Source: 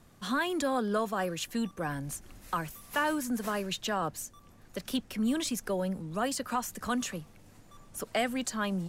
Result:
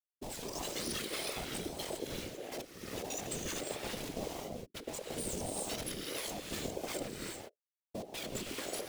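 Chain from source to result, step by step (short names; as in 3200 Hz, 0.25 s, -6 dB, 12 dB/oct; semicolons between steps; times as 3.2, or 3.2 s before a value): spectrum mirrored in octaves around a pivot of 1400 Hz; harmonic-percussive split harmonic -17 dB; HPF 180 Hz 24 dB/oct; transient shaper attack +3 dB, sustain -11 dB; Schmitt trigger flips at -38 dBFS; phaser stages 2, 0.8 Hz, lowest notch 520–1300 Hz; non-linear reverb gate 0.42 s rising, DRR -1 dB; whisperiser; ring modulator with a swept carrier 400 Hz, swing 30%, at 1.6 Hz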